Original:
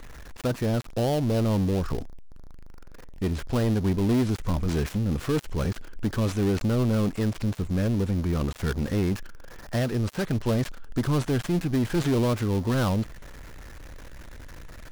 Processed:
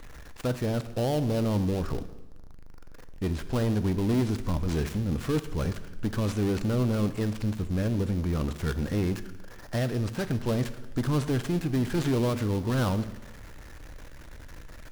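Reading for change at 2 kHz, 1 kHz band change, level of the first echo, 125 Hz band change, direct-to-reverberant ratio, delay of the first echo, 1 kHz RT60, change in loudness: −2.0 dB, −2.0 dB, no echo audible, −2.0 dB, 11.0 dB, no echo audible, 1.1 s, −2.0 dB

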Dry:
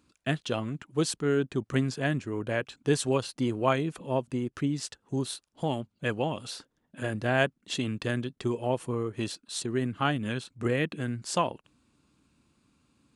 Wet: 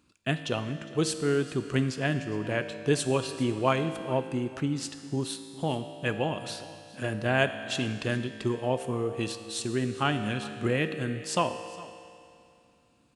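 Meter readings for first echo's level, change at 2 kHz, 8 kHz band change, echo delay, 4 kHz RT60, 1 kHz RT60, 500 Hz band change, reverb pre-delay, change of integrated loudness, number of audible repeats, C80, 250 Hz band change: −19.0 dB, +1.5 dB, +0.5 dB, 409 ms, 2.4 s, 2.5 s, +0.5 dB, 4 ms, +0.5 dB, 1, 10.0 dB, +0.5 dB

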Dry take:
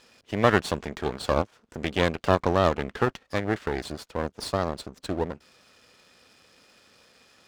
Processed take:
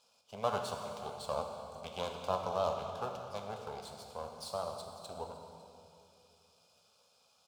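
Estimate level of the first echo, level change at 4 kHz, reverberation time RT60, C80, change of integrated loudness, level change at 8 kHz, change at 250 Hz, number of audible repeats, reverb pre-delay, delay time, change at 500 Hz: −21.0 dB, −10.5 dB, 2.6 s, 5.0 dB, −12.0 dB, −8.0 dB, −21.0 dB, 1, 15 ms, 552 ms, −11.5 dB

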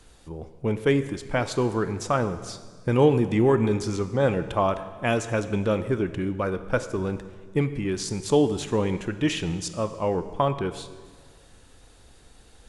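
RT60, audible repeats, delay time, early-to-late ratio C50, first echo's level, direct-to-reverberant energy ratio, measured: 1.6 s, no echo audible, no echo audible, 12.5 dB, no echo audible, 11.0 dB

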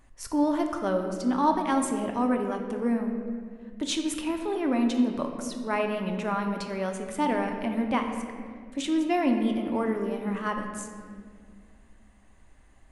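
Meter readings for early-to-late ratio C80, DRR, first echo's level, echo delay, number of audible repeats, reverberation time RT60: 7.0 dB, 3.5 dB, no echo audible, no echo audible, no echo audible, 2.1 s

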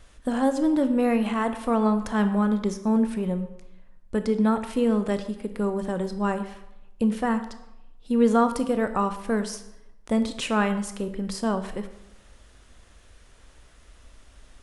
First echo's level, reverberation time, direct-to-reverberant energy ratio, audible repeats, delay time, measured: no echo audible, 0.90 s, 9.0 dB, no echo audible, no echo audible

